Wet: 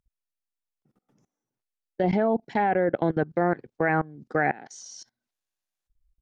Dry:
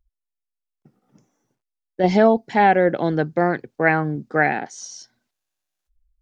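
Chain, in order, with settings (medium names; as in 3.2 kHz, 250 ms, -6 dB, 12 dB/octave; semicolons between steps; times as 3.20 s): level held to a coarse grid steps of 22 dB; low-pass that closes with the level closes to 2 kHz, closed at -19 dBFS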